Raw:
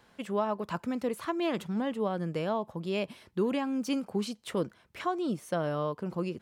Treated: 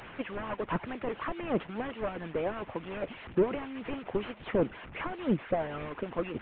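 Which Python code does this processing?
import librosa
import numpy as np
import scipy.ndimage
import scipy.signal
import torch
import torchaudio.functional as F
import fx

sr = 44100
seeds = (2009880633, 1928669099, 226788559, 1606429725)

y = fx.delta_mod(x, sr, bps=16000, step_db=-43.5)
y = fx.hpss(y, sr, part='harmonic', gain_db=-18)
y = y * librosa.db_to_amplitude(8.5)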